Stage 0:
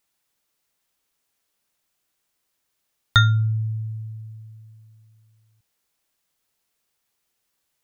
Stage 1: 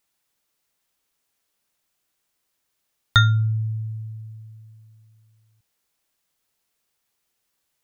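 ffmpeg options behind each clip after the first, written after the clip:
-af anull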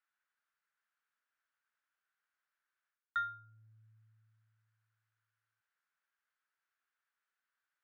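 -af "areverse,acompressor=threshold=0.0447:ratio=6,areverse,bandpass=f=1500:t=q:w=4.4:csg=0,volume=1.12"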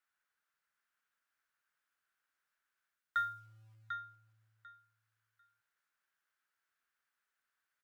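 -filter_complex "[0:a]acrossover=split=990[s0][s1];[s0]acrusher=bits=4:mode=log:mix=0:aa=0.000001[s2];[s1]aecho=1:1:745|1490|2235:0.501|0.0852|0.0145[s3];[s2][s3]amix=inputs=2:normalize=0,volume=1.19"

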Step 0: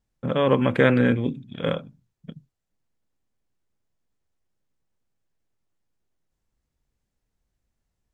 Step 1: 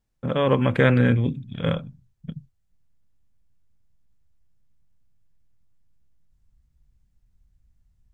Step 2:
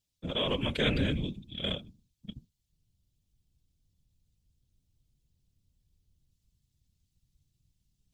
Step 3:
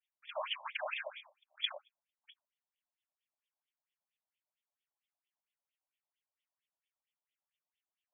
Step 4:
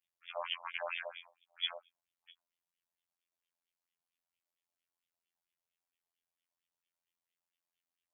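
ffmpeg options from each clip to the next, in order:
-af "asubboost=boost=7.5:cutoff=150"
-af "highshelf=f=2300:t=q:w=1.5:g=13.5,afftfilt=real='hypot(re,im)*cos(2*PI*random(0))':imag='hypot(re,im)*sin(2*PI*random(1))':win_size=512:overlap=0.75,volume=0.562"
-af "afftfilt=real='re*between(b*sr/1024,760*pow(2600/760,0.5+0.5*sin(2*PI*4.4*pts/sr))/1.41,760*pow(2600/760,0.5+0.5*sin(2*PI*4.4*pts/sr))*1.41)':imag='im*between(b*sr/1024,760*pow(2600/760,0.5+0.5*sin(2*PI*4.4*pts/sr))/1.41,760*pow(2600/760,0.5+0.5*sin(2*PI*4.4*pts/sr))*1.41)':win_size=1024:overlap=0.75,volume=1.33"
-af "afftfilt=real='hypot(re,im)*cos(PI*b)':imag='0':win_size=2048:overlap=0.75,volume=1.41"

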